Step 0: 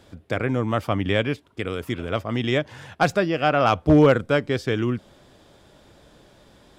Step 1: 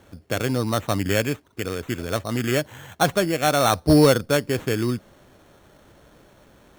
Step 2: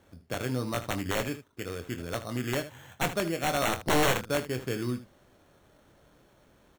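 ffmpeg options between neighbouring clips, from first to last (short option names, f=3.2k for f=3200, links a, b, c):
-af "acrusher=samples=9:mix=1:aa=0.000001"
-af "aeval=exprs='(mod(3.16*val(0)+1,2)-1)/3.16':c=same,aecho=1:1:24|77:0.355|0.224,volume=-9dB"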